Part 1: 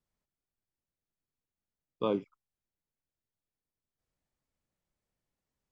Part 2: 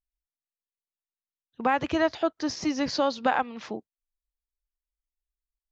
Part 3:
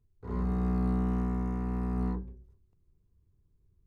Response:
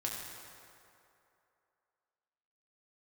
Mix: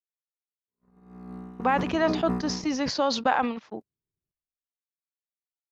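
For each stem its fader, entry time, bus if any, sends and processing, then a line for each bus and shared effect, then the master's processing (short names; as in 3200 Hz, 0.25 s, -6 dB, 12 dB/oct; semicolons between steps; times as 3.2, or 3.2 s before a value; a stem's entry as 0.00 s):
+3.0 dB, 0.00 s, no send, octave resonator D#, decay 0.15 s
-1.5 dB, 0.00 s, no send, bell 960 Hz +2.5 dB 1.4 oct
-3.0 dB, 0.45 s, no send, HPF 160 Hz 12 dB/oct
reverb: off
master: gate -33 dBFS, range -52 dB; sustainer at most 69 dB/s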